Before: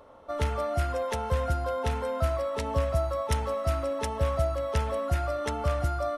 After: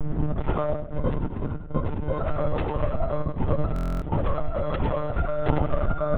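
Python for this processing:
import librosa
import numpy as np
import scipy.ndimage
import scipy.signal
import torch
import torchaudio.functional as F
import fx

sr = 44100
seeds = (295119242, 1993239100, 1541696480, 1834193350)

y = fx.dmg_wind(x, sr, seeds[0], corner_hz=220.0, level_db=-25.0)
y = scipy.signal.sosfilt(scipy.signal.bessel(2, 3100.0, 'lowpass', norm='mag', fs=sr, output='sos'), y)
y = fx.low_shelf(y, sr, hz=73.0, db=11.5)
y = fx.hum_notches(y, sr, base_hz=50, count=3)
y = fx.over_compress(y, sr, threshold_db=-22.0, ratio=-0.5)
y = fx.echo_feedback(y, sr, ms=95, feedback_pct=31, wet_db=-7)
y = fx.lpc_monotone(y, sr, seeds[1], pitch_hz=150.0, order=16)
y = fx.buffer_glitch(y, sr, at_s=(3.74,), block=1024, repeats=11)
y = y * librosa.db_to_amplitude(-2.0)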